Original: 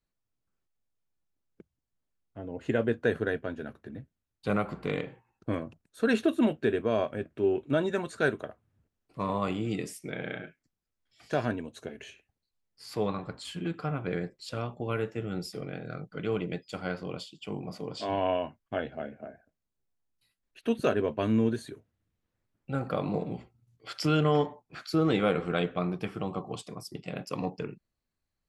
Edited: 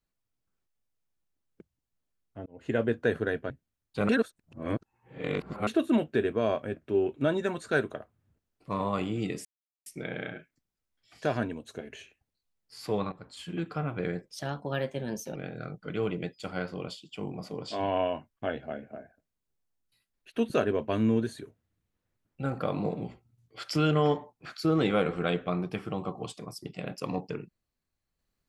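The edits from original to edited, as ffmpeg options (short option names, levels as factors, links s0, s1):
-filter_complex "[0:a]asplit=9[s0][s1][s2][s3][s4][s5][s6][s7][s8];[s0]atrim=end=2.46,asetpts=PTS-STARTPTS,afade=t=out:st=2.456:d=0.004:c=hsin[s9];[s1]atrim=start=2.46:end=3.502,asetpts=PTS-STARTPTS,afade=t=in:d=0.31[s10];[s2]atrim=start=3.988:end=4.582[s11];[s3]atrim=start=4.578:end=6.162,asetpts=PTS-STARTPTS,areverse[s12];[s4]atrim=start=6.158:end=9.94,asetpts=PTS-STARTPTS,afade=t=out:st=3.778:d=0.004:c=hsin,apad=pad_dur=0.41[s13];[s5]atrim=start=9.94:end=13.2,asetpts=PTS-STARTPTS,afade=t=in:d=0.004:c=hsin,afade=t=out:st=3.256:d=0.004:c=hsin:silence=0.223872[s14];[s6]atrim=start=13.2:end=14.374,asetpts=PTS-STARTPTS,afade=t=in:d=0.48:silence=0.223872[s15];[s7]atrim=start=14.37:end=15.65,asetpts=PTS-STARTPTS,asetrate=52920,aresample=44100[s16];[s8]atrim=start=15.646[s17];[s9][s10]concat=n=2:v=0:a=1[s18];[s18][s11]acrossfade=d=0.004:c1=hsin:c2=hsin[s19];[s19][s12]acrossfade=d=0.004:c1=hsin:c2=hsin[s20];[s13][s14][s15]concat=n=3:v=0:a=1[s21];[s20][s21]acrossfade=d=0.004:c1=hsin:c2=hsin[s22];[s22][s16]acrossfade=d=0.004:c1=hsin:c2=hsin[s23];[s23][s17]acrossfade=d=0.004:c1=hsin:c2=hsin"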